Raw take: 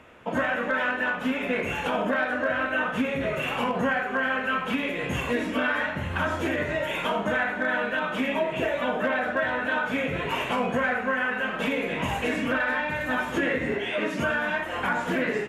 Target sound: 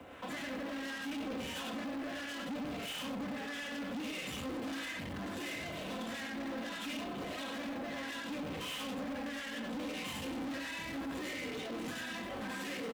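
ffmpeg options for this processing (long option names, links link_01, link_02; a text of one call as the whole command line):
ffmpeg -i in.wav -filter_complex "[0:a]aecho=1:1:120:0.596,asetrate=48000,aresample=44100,acrossover=split=940[link_01][link_02];[link_01]aeval=exprs='val(0)*(1-0.7/2+0.7/2*cos(2*PI*1.4*n/s))':channel_layout=same[link_03];[link_02]aeval=exprs='val(0)*(1-0.7/2-0.7/2*cos(2*PI*1.4*n/s))':channel_layout=same[link_04];[link_03][link_04]amix=inputs=2:normalize=0,acrossover=split=440|3000[link_05][link_06][link_07];[link_06]acompressor=threshold=-41dB:ratio=8[link_08];[link_05][link_08][link_07]amix=inputs=3:normalize=0,acrossover=split=140|910[link_09][link_10][link_11];[link_10]acrusher=bits=4:mode=log:mix=0:aa=0.000001[link_12];[link_09][link_12][link_11]amix=inputs=3:normalize=0,aeval=exprs='(tanh(126*val(0)+0.2)-tanh(0.2))/126':channel_layout=same,highpass=frequency=64:poles=1,aecho=1:1:3.9:0.34,atempo=1.1,volume=3dB" out.wav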